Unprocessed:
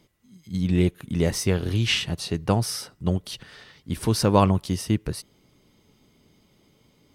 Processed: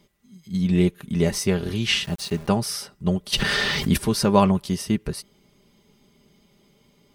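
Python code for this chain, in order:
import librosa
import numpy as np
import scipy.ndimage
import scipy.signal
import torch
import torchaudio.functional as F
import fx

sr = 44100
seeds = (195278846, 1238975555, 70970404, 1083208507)

y = fx.sample_gate(x, sr, floor_db=-38.0, at=(2.04, 2.48))
y = y + 0.55 * np.pad(y, (int(5.0 * sr / 1000.0), 0))[:len(y)]
y = fx.env_flatten(y, sr, amount_pct=70, at=(3.32, 3.96), fade=0.02)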